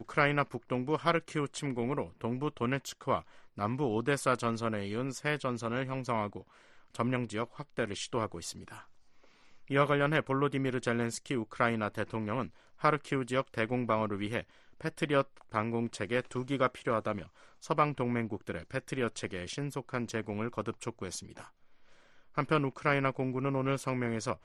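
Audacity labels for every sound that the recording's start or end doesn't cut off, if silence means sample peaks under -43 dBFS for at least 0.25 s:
3.580000	6.410000	sound
6.950000	8.810000	sound
9.680000	12.480000	sound
12.810000	14.420000	sound
14.810000	17.240000	sound
17.630000	21.450000	sound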